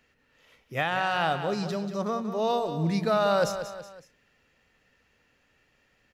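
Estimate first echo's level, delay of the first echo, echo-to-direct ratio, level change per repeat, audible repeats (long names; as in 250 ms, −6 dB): −10.0 dB, 186 ms, −9.0 dB, −7.0 dB, 3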